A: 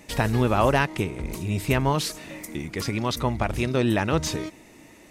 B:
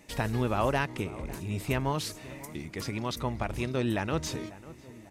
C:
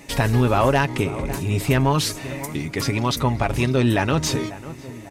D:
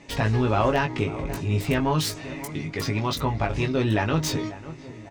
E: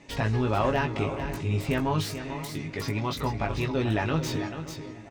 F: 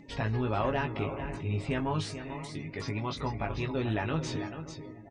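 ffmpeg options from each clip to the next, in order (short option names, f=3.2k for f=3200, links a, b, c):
-filter_complex "[0:a]asplit=2[a][b];[b]adelay=546,lowpass=f=1.6k:p=1,volume=-17dB,asplit=2[c][d];[d]adelay=546,lowpass=f=1.6k:p=1,volume=0.54,asplit=2[e][f];[f]adelay=546,lowpass=f=1.6k:p=1,volume=0.54,asplit=2[g][h];[h]adelay=546,lowpass=f=1.6k:p=1,volume=0.54,asplit=2[i][j];[j]adelay=546,lowpass=f=1.6k:p=1,volume=0.54[k];[a][c][e][g][i][k]amix=inputs=6:normalize=0,volume=-7dB"
-filter_complex "[0:a]aecho=1:1:7.3:0.39,asplit=2[a][b];[b]alimiter=limit=-20dB:level=0:latency=1,volume=2dB[c];[a][c]amix=inputs=2:normalize=0,asoftclip=type=tanh:threshold=-11.5dB,volume=4.5dB"
-filter_complex "[0:a]acrossover=split=7000[a][b];[b]acrusher=bits=4:mix=0:aa=0.000001[c];[a][c]amix=inputs=2:normalize=0,asplit=2[d][e];[e]adelay=19,volume=-5dB[f];[d][f]amix=inputs=2:normalize=0,volume=-5dB"
-filter_complex "[0:a]aecho=1:1:440:0.316,acrossover=split=3300[a][b];[b]asoftclip=type=tanh:threshold=-31.5dB[c];[a][c]amix=inputs=2:normalize=0,volume=-3.5dB"
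-af "aresample=22050,aresample=44100,afftdn=nr=20:nf=-48,acompressor=mode=upward:threshold=-41dB:ratio=2.5,volume=-4.5dB"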